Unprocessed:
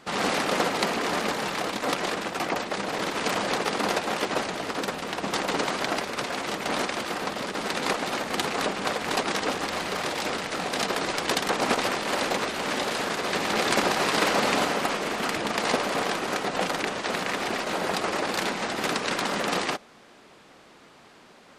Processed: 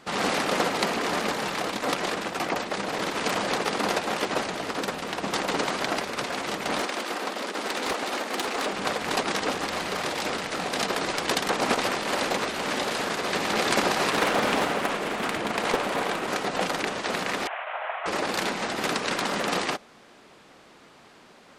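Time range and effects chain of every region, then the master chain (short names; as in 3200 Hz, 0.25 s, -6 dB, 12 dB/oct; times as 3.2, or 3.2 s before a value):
6.8–8.72 HPF 230 Hz 24 dB/oct + overloaded stage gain 22.5 dB
14.1–16.29 bell 5300 Hz -5.5 dB 0.8 oct + Doppler distortion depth 0.49 ms
17.47–18.06 CVSD 16 kbps + elliptic high-pass 630 Hz, stop band 70 dB + air absorption 100 m
whole clip: dry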